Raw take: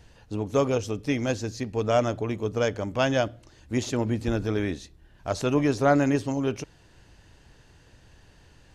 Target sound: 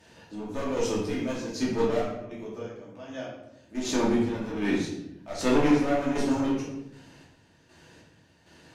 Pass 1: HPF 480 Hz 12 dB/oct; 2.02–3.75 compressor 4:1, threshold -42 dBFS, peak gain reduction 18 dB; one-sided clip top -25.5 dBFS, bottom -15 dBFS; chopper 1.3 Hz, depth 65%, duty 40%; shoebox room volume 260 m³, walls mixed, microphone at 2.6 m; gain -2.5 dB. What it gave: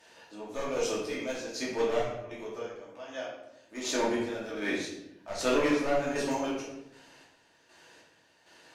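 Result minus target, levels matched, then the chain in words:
125 Hz band -6.5 dB
HPF 170 Hz 12 dB/oct; 2.02–3.75 compressor 4:1, threshold -42 dBFS, peak gain reduction 19 dB; one-sided clip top -25.5 dBFS, bottom -15 dBFS; chopper 1.3 Hz, depth 65%, duty 40%; shoebox room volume 260 m³, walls mixed, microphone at 2.6 m; gain -2.5 dB

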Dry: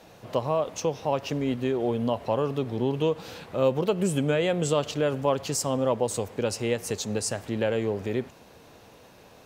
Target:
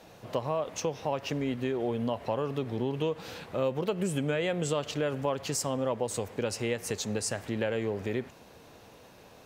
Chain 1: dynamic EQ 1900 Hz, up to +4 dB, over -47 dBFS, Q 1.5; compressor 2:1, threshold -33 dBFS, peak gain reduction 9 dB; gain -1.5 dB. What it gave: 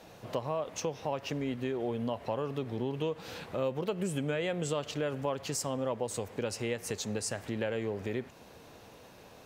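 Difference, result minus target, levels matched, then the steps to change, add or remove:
compressor: peak gain reduction +3 dB
change: compressor 2:1, threshold -27 dBFS, peak gain reduction 6 dB

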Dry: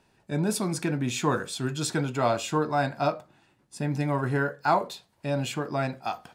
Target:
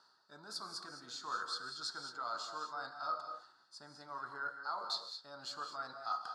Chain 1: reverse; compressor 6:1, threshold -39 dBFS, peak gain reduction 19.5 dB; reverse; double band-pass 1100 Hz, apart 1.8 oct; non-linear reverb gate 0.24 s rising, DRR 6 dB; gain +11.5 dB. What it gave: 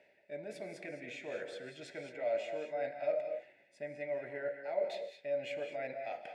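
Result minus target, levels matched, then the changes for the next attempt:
1000 Hz band -9.0 dB
change: double band-pass 2400 Hz, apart 1.8 oct

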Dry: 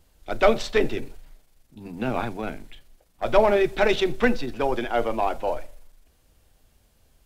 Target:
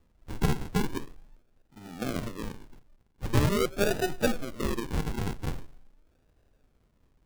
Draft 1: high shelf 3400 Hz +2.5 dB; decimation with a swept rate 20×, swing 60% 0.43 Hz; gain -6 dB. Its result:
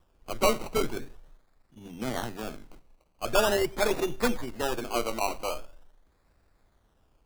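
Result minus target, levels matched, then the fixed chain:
decimation with a swept rate: distortion -11 dB
high shelf 3400 Hz +2.5 dB; decimation with a swept rate 57×, swing 60% 0.43 Hz; gain -6 dB

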